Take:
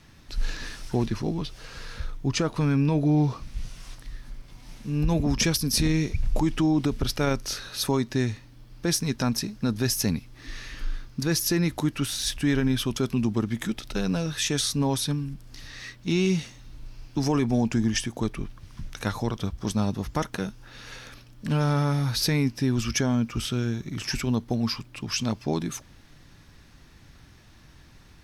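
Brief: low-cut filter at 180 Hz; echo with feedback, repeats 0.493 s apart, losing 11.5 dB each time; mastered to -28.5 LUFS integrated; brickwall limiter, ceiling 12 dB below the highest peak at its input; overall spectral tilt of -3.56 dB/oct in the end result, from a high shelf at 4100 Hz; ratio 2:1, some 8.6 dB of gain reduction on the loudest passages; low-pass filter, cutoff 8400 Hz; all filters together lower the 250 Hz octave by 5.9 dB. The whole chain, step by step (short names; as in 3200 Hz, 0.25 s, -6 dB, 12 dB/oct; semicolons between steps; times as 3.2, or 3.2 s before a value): HPF 180 Hz; LPF 8400 Hz; bell 250 Hz -6 dB; high shelf 4100 Hz +6 dB; compressor 2:1, threshold -35 dBFS; limiter -27.5 dBFS; feedback echo 0.493 s, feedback 27%, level -11.5 dB; gain +10 dB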